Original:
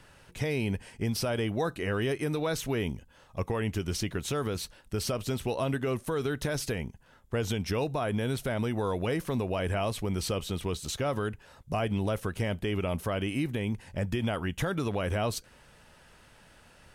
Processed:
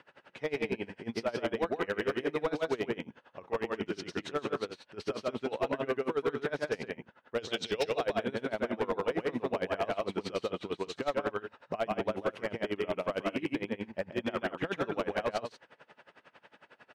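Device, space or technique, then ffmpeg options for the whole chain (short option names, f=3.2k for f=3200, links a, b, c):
helicopter radio: -filter_complex "[0:a]asettb=1/sr,asplit=3[a][b][c];[a]atrim=end=7.384[d];[b]atrim=start=7.38:end=8.1,asetpts=PTS-STARTPTS,afade=t=in:d=0.004:c=qsin,afade=t=out:st=0.716:d=0.004:c=qsin,equalizer=f=250:t=o:w=1:g=-5,equalizer=f=500:t=o:w=1:g=4,equalizer=f=1k:t=o:w=1:g=-4,equalizer=f=4k:t=o:w=1:g=11,equalizer=f=8k:t=o:w=1:g=8[e];[c]atrim=start=8.096[f];[d][e]acrossfade=d=0.004:c1=hsin:c2=qsin[g];[g][f]acrossfade=d=0.004:c1=qsin:c2=hsin,highpass=300,lowpass=2.6k,aecho=1:1:139.9|189.5:0.794|0.316,aeval=exprs='val(0)*pow(10,-24*(0.5-0.5*cos(2*PI*11*n/s))/20)':c=same,asoftclip=type=hard:threshold=-28.5dB,volume=5dB"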